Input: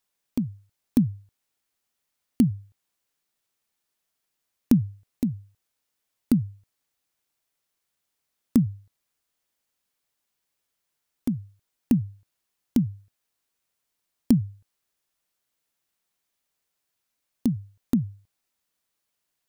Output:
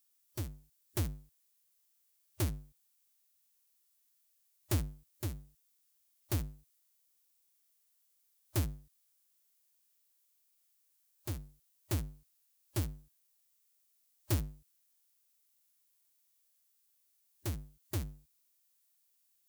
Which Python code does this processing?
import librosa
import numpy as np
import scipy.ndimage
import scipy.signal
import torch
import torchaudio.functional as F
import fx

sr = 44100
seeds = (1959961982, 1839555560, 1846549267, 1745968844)

y = fx.cycle_switch(x, sr, every=2, mode='inverted')
y = fx.hpss(y, sr, part='percussive', gain_db=-17)
y = scipy.signal.lfilter([1.0, -0.8], [1.0], y)
y = F.gain(torch.from_numpy(y), 9.0).numpy()